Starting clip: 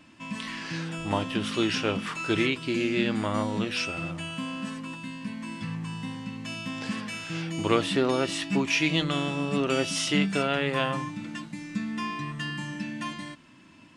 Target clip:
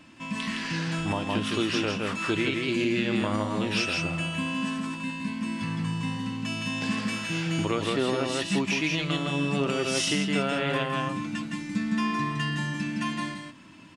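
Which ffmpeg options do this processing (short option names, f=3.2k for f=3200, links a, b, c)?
-af "aecho=1:1:163:0.668,alimiter=limit=-17.5dB:level=0:latency=1:release=429,acontrast=89,volume=-5dB"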